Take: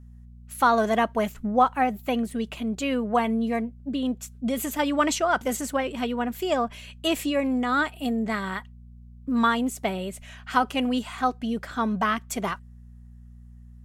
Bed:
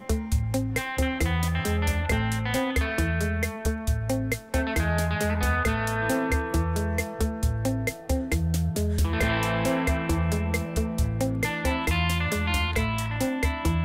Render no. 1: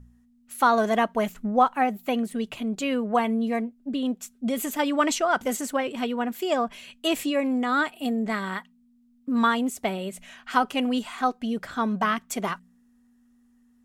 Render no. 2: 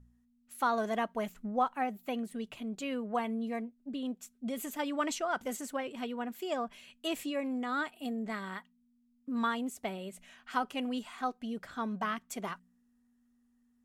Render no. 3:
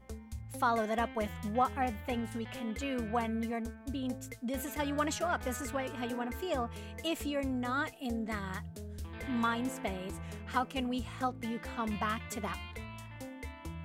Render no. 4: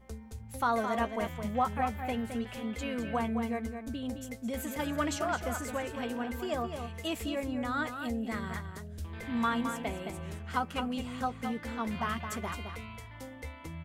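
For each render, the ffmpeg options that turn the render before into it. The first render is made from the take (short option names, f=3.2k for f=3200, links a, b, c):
-af "bandreject=f=60:t=h:w=4,bandreject=f=120:t=h:w=4,bandreject=f=180:t=h:w=4"
-af "volume=-10dB"
-filter_complex "[1:a]volume=-18.5dB[a];[0:a][a]amix=inputs=2:normalize=0"
-filter_complex "[0:a]asplit=2[a][b];[b]adelay=13,volume=-12dB[c];[a][c]amix=inputs=2:normalize=0,asplit=2[d][e];[e]adelay=215.7,volume=-7dB,highshelf=f=4k:g=-4.85[f];[d][f]amix=inputs=2:normalize=0"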